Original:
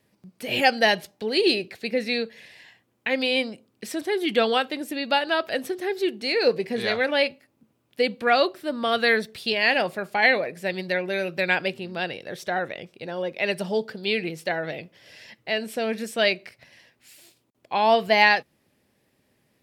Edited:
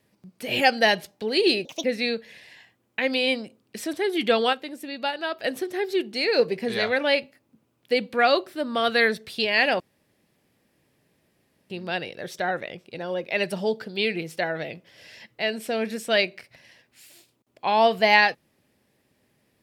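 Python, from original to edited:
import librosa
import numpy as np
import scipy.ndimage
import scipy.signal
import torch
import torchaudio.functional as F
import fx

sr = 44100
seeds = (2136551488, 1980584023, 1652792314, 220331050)

y = fx.edit(x, sr, fx.speed_span(start_s=1.65, length_s=0.27, speed=1.42),
    fx.clip_gain(start_s=4.61, length_s=0.91, db=-5.5),
    fx.room_tone_fill(start_s=9.88, length_s=1.9), tone=tone)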